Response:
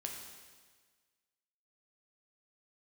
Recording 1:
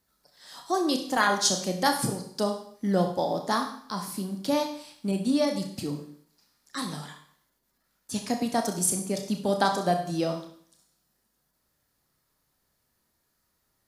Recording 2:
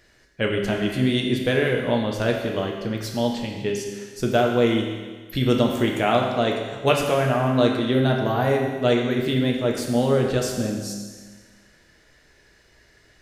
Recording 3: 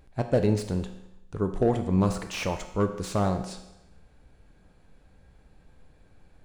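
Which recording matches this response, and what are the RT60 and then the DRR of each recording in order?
2; 0.60, 1.5, 0.90 s; 4.0, 0.5, 6.5 dB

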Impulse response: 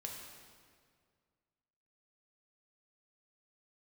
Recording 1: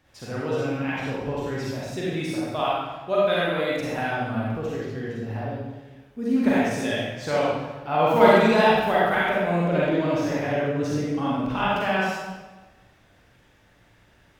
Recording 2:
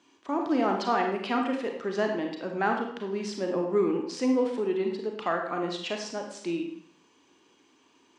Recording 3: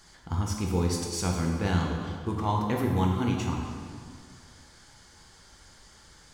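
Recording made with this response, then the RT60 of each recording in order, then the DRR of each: 3; 1.2, 0.70, 2.0 s; -7.5, 2.5, -0.5 dB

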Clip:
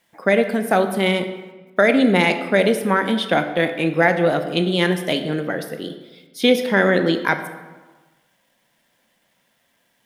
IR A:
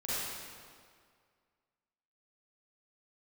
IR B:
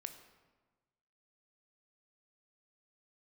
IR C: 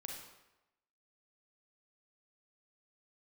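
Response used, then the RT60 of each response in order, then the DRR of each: B; 2.0, 1.3, 0.95 s; -11.5, 7.5, 0.0 dB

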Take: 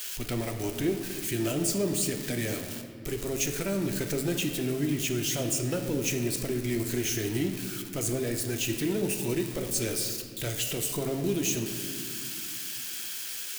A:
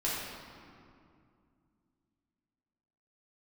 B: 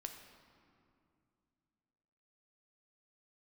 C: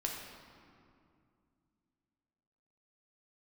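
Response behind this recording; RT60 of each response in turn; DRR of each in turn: B; 2.4, 2.5, 2.4 s; -8.0, 4.5, -1.0 dB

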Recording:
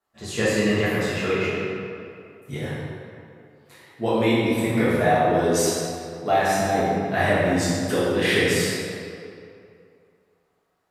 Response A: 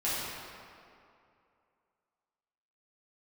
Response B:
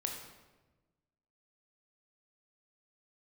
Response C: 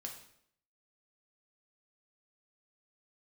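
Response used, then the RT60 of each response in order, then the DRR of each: A; 2.5, 1.2, 0.70 s; -11.0, 1.5, 1.0 dB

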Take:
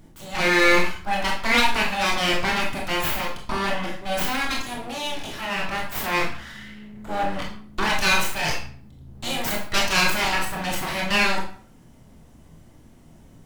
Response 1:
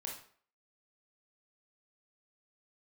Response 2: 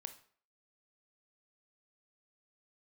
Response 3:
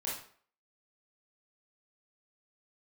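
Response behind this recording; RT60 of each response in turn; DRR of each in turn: 1; 0.50, 0.50, 0.50 s; -1.5, 8.0, -7.0 dB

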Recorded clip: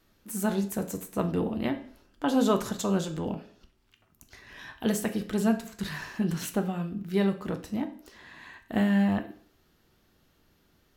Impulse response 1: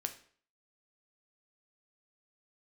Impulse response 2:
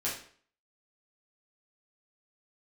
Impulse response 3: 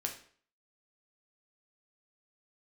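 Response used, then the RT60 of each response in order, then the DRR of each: 1; 0.50, 0.50, 0.50 s; 6.0, -8.5, 1.5 dB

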